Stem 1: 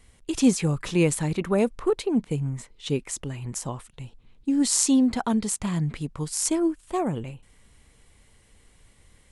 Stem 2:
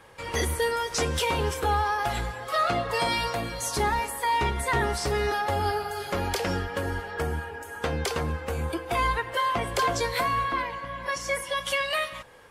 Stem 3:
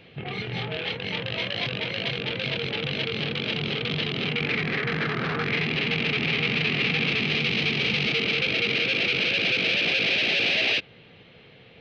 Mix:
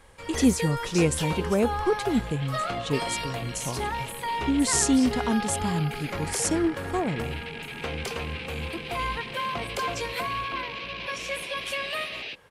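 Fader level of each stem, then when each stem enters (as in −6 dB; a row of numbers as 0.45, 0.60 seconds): −1.5, −5.0, −13.5 decibels; 0.00, 0.00, 1.55 seconds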